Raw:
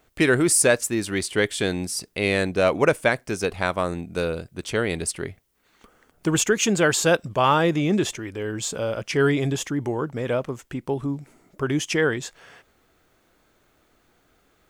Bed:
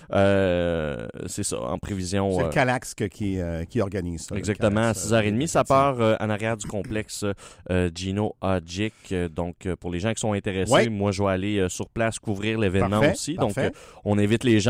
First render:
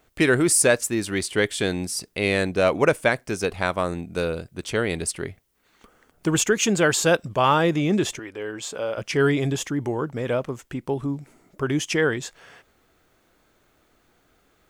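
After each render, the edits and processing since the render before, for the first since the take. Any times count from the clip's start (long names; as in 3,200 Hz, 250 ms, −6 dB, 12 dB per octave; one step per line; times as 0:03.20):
0:08.19–0:08.98: bass and treble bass −13 dB, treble −6 dB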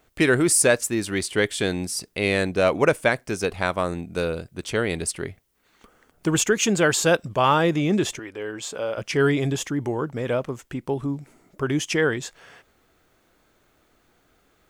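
no processing that can be heard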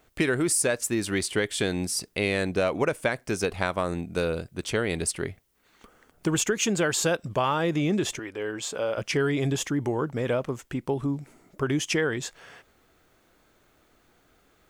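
downward compressor, threshold −21 dBFS, peak gain reduction 8.5 dB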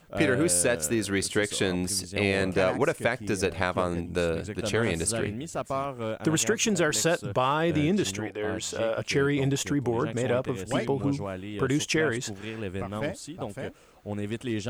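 mix in bed −11.5 dB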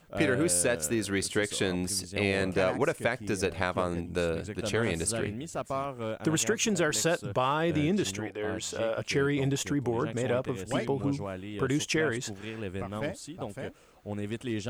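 level −2.5 dB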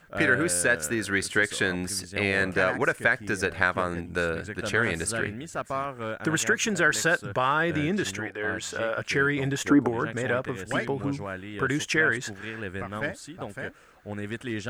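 0:09.68–0:09.88: gain on a spectral selection 210–1,400 Hz +11 dB
parametric band 1,600 Hz +12 dB 0.7 octaves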